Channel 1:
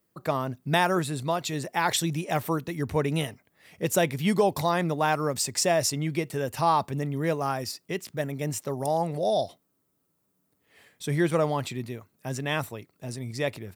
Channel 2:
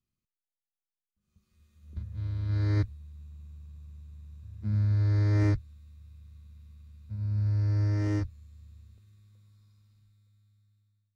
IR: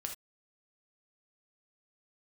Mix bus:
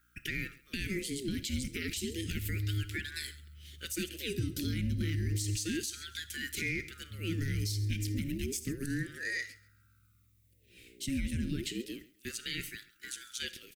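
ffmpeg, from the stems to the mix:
-filter_complex "[0:a]acompressor=threshold=-27dB:ratio=6,aeval=exprs='val(0)+0.00251*(sin(2*PI*60*n/s)+sin(2*PI*2*60*n/s)/2+sin(2*PI*3*60*n/s)/3+sin(2*PI*4*60*n/s)/4+sin(2*PI*5*60*n/s)/5)':channel_layout=same,aeval=exprs='val(0)*sin(2*PI*860*n/s+860*0.55/0.31*sin(2*PI*0.31*n/s))':channel_layout=same,volume=2dB,asplit=3[link_01][link_02][link_03];[link_02]volume=-6dB[link_04];[link_03]volume=-18.5dB[link_05];[1:a]aeval=exprs='val(0)+0.000631*(sin(2*PI*60*n/s)+sin(2*PI*2*60*n/s)/2+sin(2*PI*3*60*n/s)/3+sin(2*PI*4*60*n/s)/4+sin(2*PI*5*60*n/s)/5)':channel_layout=same,volume=-9dB,asplit=2[link_06][link_07];[link_07]volume=-10.5dB[link_08];[2:a]atrim=start_sample=2205[link_09];[link_04][link_09]afir=irnorm=-1:irlink=0[link_10];[link_05][link_08]amix=inputs=2:normalize=0,aecho=0:1:135|270|405|540:1|0.24|0.0576|0.0138[link_11];[link_01][link_06][link_10][link_11]amix=inputs=4:normalize=0,asuperstop=centerf=860:order=8:qfactor=0.52,alimiter=level_in=0.5dB:limit=-24dB:level=0:latency=1:release=72,volume=-0.5dB"

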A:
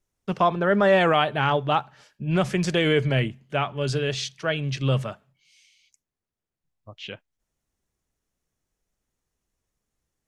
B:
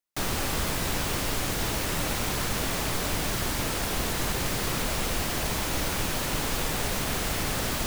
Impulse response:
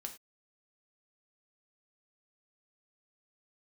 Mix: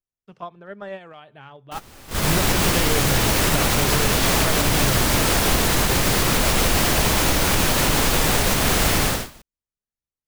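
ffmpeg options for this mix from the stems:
-filter_complex "[0:a]acompressor=threshold=-22dB:ratio=5,volume=1.5dB[link_01];[1:a]dynaudnorm=framelen=250:gausssize=5:maxgain=13dB,adelay=1550,volume=-1dB[link_02];[link_01][link_02]amix=inputs=2:normalize=0,agate=range=-19dB:threshold=-20dB:ratio=16:detection=peak,alimiter=limit=-8dB:level=0:latency=1:release=76"

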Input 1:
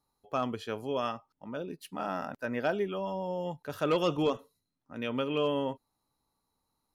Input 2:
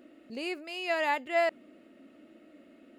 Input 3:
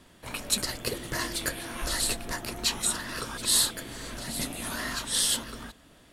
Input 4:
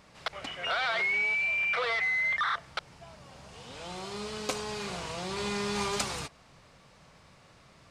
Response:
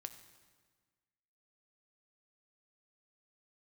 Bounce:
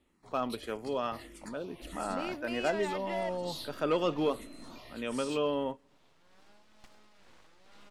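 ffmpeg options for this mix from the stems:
-filter_complex "[0:a]highpass=170,volume=-1.5dB,asplit=2[link_01][link_02];[link_02]volume=-18.5dB[link_03];[1:a]acompressor=threshold=-32dB:ratio=6,asoftclip=type=tanh:threshold=-35.5dB,adelay=1800,volume=2.5dB[link_04];[2:a]equalizer=frequency=1600:width=6:gain=-12,asplit=2[link_05][link_06];[link_06]afreqshift=-1.6[link_07];[link_05][link_07]amix=inputs=2:normalize=1,volume=-12.5dB[link_08];[3:a]acompressor=threshold=-33dB:ratio=2,aeval=exprs='abs(val(0))':channel_layout=same,tremolo=f=2.2:d=0.42,adelay=2350,volume=-17.5dB[link_09];[4:a]atrim=start_sample=2205[link_10];[link_03][link_10]afir=irnorm=-1:irlink=0[link_11];[link_01][link_04][link_08][link_09][link_11]amix=inputs=5:normalize=0,highshelf=frequency=5700:gain=-10.5"

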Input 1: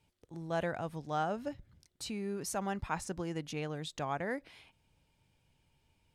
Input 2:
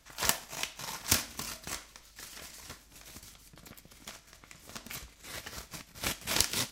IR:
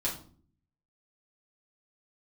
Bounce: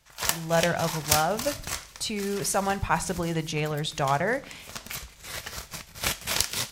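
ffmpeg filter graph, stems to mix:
-filter_complex "[0:a]volume=1.5dB,asplit=2[link_01][link_02];[link_02]volume=-16.5dB[link_03];[1:a]volume=-2.5dB[link_04];[2:a]atrim=start_sample=2205[link_05];[link_03][link_05]afir=irnorm=-1:irlink=0[link_06];[link_01][link_04][link_06]amix=inputs=3:normalize=0,equalizer=frequency=280:width=2.2:gain=-8.5,dynaudnorm=framelen=110:gausssize=3:maxgain=9dB"

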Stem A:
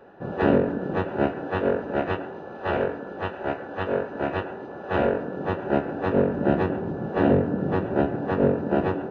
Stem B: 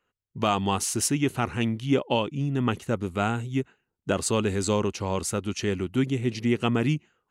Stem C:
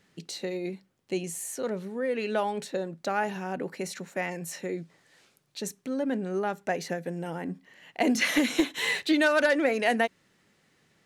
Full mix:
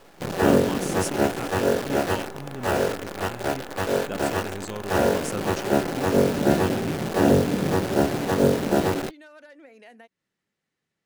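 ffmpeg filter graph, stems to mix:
ffmpeg -i stem1.wav -i stem2.wav -i stem3.wav -filter_complex "[0:a]acrusher=bits=6:dc=4:mix=0:aa=0.000001,volume=1.5dB[link_01];[1:a]volume=1.5dB[link_02];[2:a]acompressor=threshold=-29dB:ratio=6,volume=-16.5dB,asplit=2[link_03][link_04];[link_04]apad=whole_len=322225[link_05];[link_02][link_05]sidechaincompress=threshold=-59dB:ratio=4:attack=5.4:release=1090[link_06];[link_01][link_06][link_03]amix=inputs=3:normalize=0" out.wav

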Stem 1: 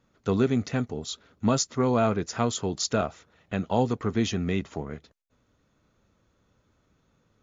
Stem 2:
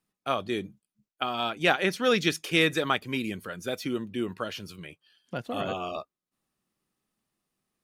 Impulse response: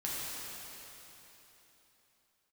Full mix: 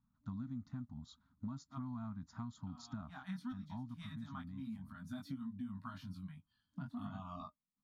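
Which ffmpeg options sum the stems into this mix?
-filter_complex "[0:a]volume=-9.5dB,afade=type=out:start_time=3.43:duration=0.61:silence=0.316228,asplit=2[link_01][link_02];[1:a]flanger=delay=19.5:depth=2.6:speed=1.4,adelay=1450,volume=1dB[link_03];[link_02]apad=whole_len=409668[link_04];[link_03][link_04]sidechaincompress=threshold=-54dB:ratio=8:attack=7.5:release=193[link_05];[link_01][link_05]amix=inputs=2:normalize=0,afftfilt=real='re*(1-between(b*sr/4096,280,610))':imag='im*(1-between(b*sr/4096,280,610))':win_size=4096:overlap=0.75,firequalizer=gain_entry='entry(250,0);entry(670,-19);entry(960,-4);entry(2600,-26);entry(3800,-13);entry(6000,-20);entry(8600,-18)':delay=0.05:min_phase=1,acompressor=threshold=-41dB:ratio=5"

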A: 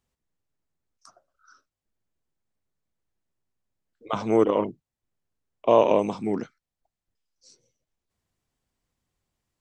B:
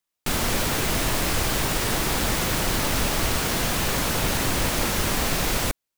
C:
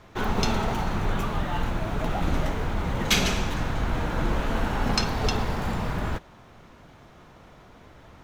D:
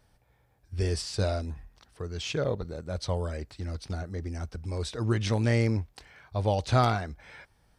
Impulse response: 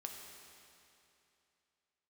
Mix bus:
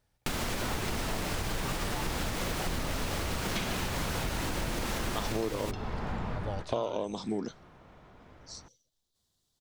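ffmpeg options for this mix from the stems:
-filter_complex "[0:a]highshelf=frequency=3000:width_type=q:width=3:gain=7,adelay=1050,volume=-1dB[link_01];[1:a]highshelf=frequency=8600:gain=-7.5,alimiter=limit=-19dB:level=0:latency=1:release=480,volume=1dB,asplit=2[link_02][link_03];[link_03]volume=-23.5dB[link_04];[2:a]aemphasis=mode=reproduction:type=50fm,adelay=450,volume=-7dB,asplit=2[link_05][link_06];[link_06]volume=-7.5dB[link_07];[3:a]volume=-10dB,asplit=2[link_08][link_09];[link_09]apad=whole_len=382891[link_10];[link_05][link_10]sidechaincompress=threshold=-37dB:ratio=8:attack=16:release=588[link_11];[4:a]atrim=start_sample=2205[link_12];[link_04][link_07]amix=inputs=2:normalize=0[link_13];[link_13][link_12]afir=irnorm=-1:irlink=0[link_14];[link_01][link_02][link_11][link_08][link_14]amix=inputs=5:normalize=0,acompressor=threshold=-29dB:ratio=6"

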